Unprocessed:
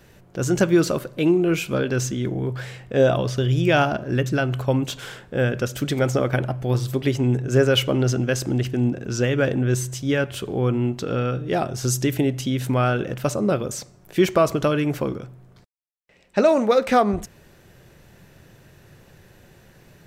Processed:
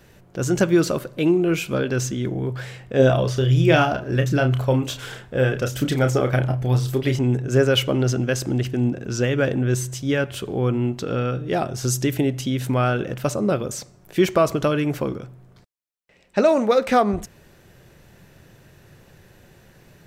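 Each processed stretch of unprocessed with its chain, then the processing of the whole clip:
0:02.99–0:07.19: phase shifter 1.4 Hz, delay 2.7 ms, feedback 27% + double-tracking delay 31 ms −7 dB
whole clip: no processing

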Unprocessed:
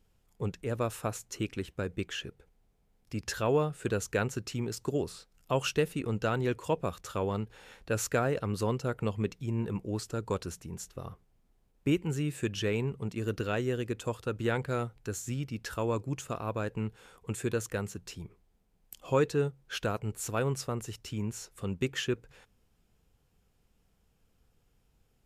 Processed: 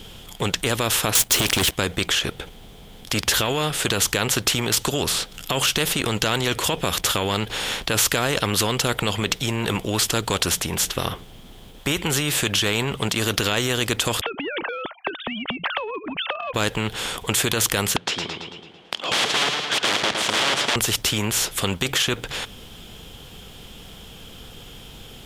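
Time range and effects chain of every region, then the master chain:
0:01.15–0:01.72: high-shelf EQ 5,100 Hz +8 dB + leveller curve on the samples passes 3
0:14.21–0:16.54: three sine waves on the formant tracks + downward compressor 12 to 1, threshold −41 dBFS
0:17.96–0:20.76: wrap-around overflow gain 32 dB + band-pass filter 340–3,000 Hz + feedback echo with a swinging delay time 111 ms, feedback 49%, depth 86 cents, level −8.5 dB
whole clip: parametric band 3,300 Hz +15 dB 0.4 octaves; boost into a limiter +25 dB; every bin compressed towards the loudest bin 2 to 1; level −1 dB

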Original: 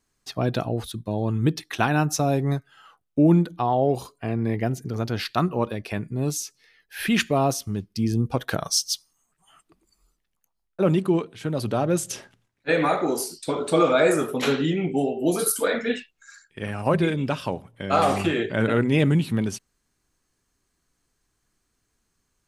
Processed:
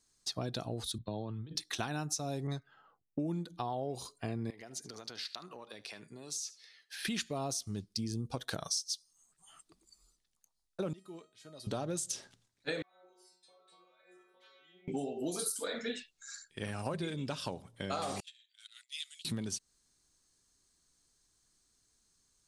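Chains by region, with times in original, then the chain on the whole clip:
0:00.98–0:01.55: compressor whose output falls as the input rises −29 dBFS + Chebyshev low-pass with heavy ripple 4,300 Hz, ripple 3 dB + multiband upward and downward expander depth 100%
0:02.47–0:03.31: low-pass that shuts in the quiet parts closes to 340 Hz, open at −18 dBFS + one half of a high-frequency compander encoder only
0:04.50–0:07.05: meter weighting curve A + downward compressor 10 to 1, threshold −38 dBFS + single-tap delay 75 ms −17.5 dB
0:10.93–0:11.67: low-shelf EQ 140 Hz −11 dB + tuned comb filter 630 Hz, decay 0.38 s, mix 90%
0:12.82–0:14.88: three-way crossover with the lows and the highs turned down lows −22 dB, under 490 Hz, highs −21 dB, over 3,200 Hz + downward compressor 4 to 1, threshold −40 dBFS + stiff-string resonator 180 Hz, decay 0.67 s, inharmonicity 0.002
0:18.20–0:19.25: noise gate −21 dBFS, range −20 dB + four-pole ladder high-pass 2,900 Hz, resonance 30%
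whole clip: flat-topped bell 5,900 Hz +10.5 dB; downward compressor 6 to 1, threshold −28 dBFS; level −6 dB

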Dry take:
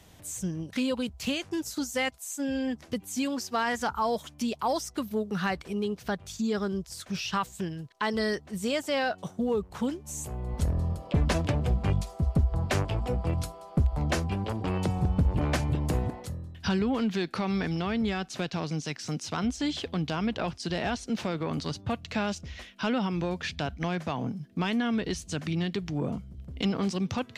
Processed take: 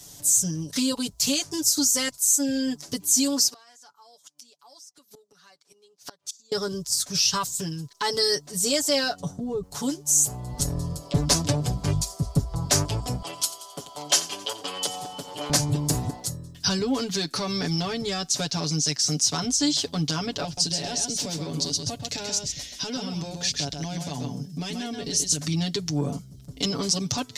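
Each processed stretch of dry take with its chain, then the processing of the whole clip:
0:03.48–0:06.52: meter weighting curve A + gate with flip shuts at −32 dBFS, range −27 dB
0:09.20–0:09.63: spectral tilt −3 dB per octave + downward compressor, threshold −27 dBFS
0:13.22–0:15.50: high-pass filter 540 Hz + parametric band 3,100 Hz +13.5 dB 0.27 octaves + repeating echo 88 ms, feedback 53%, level −16 dB
0:20.44–0:25.41: parametric band 1,200 Hz −8.5 dB 0.89 octaves + downward compressor 3 to 1, threshold −31 dBFS + single-tap delay 131 ms −5 dB
whole clip: high shelf with overshoot 3,700 Hz +13.5 dB, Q 1.5; comb filter 7 ms, depth 89%

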